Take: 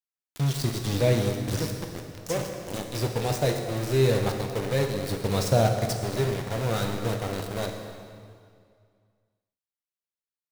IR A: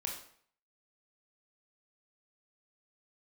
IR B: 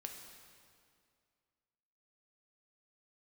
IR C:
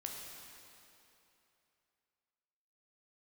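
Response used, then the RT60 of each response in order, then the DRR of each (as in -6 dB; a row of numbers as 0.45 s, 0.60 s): B; 0.60 s, 2.2 s, 3.0 s; -0.5 dB, 2.5 dB, -0.5 dB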